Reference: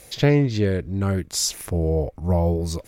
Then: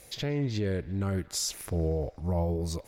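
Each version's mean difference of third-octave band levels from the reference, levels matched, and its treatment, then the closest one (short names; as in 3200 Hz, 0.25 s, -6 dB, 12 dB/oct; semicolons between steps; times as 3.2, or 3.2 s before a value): 3.0 dB: limiter -15 dBFS, peak gain reduction 9.5 dB; on a send: band-limited delay 0.116 s, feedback 78%, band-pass 1500 Hz, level -18.5 dB; on the sum: gain -6 dB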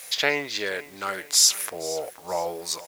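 12.5 dB: HPF 1000 Hz 12 dB/oct; requantised 10-bit, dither triangular; feedback echo 0.473 s, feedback 39%, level -18 dB; gain +6.5 dB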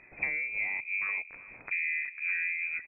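18.0 dB: compressor 6:1, threshold -24 dBFS, peak gain reduction 12 dB; on a send: echo 0.372 s -17.5 dB; on the sum: inverted band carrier 2500 Hz; gain -5.5 dB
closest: first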